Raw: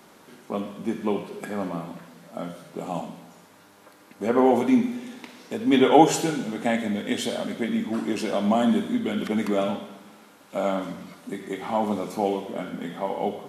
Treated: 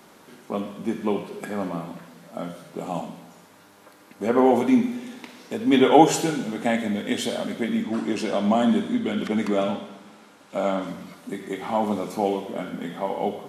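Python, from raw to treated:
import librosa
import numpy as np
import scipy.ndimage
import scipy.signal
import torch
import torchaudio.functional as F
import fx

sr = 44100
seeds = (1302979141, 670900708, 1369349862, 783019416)

y = fx.lowpass(x, sr, hz=9500.0, slope=12, at=(7.82, 10.87))
y = y * librosa.db_to_amplitude(1.0)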